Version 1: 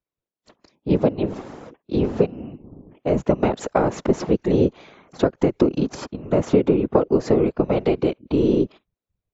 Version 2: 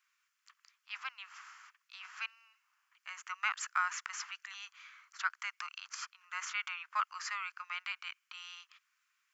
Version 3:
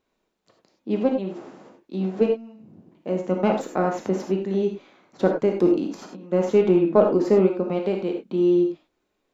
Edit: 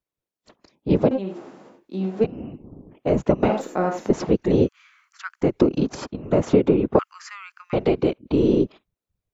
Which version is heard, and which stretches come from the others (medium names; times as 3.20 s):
1
1.11–2.24 s: from 3
3.49–4.10 s: from 3
4.66–5.43 s: from 2, crossfade 0.06 s
6.99–7.73 s: from 2